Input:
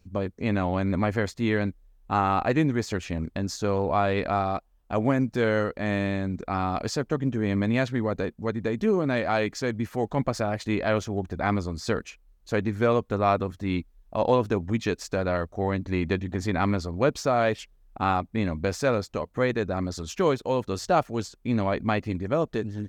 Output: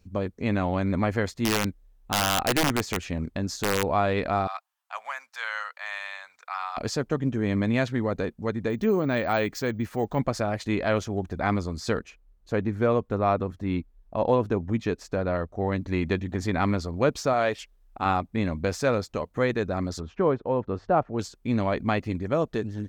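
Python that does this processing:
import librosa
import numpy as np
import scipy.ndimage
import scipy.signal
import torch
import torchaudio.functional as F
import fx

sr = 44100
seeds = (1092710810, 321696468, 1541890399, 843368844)

y = fx.overflow_wrap(x, sr, gain_db=16.0, at=(1.45, 3.84))
y = fx.cheby2_highpass(y, sr, hz=360.0, order=4, stop_db=50, at=(4.47, 6.77))
y = fx.resample_bad(y, sr, factor=2, down='none', up='hold', at=(8.7, 10.19))
y = fx.high_shelf(y, sr, hz=2100.0, db=-8.5, at=(11.99, 15.72))
y = fx.peak_eq(y, sr, hz=130.0, db=-6.5, octaves=2.4, at=(17.33, 18.06))
y = fx.lowpass(y, sr, hz=1400.0, slope=12, at=(20.0, 21.19))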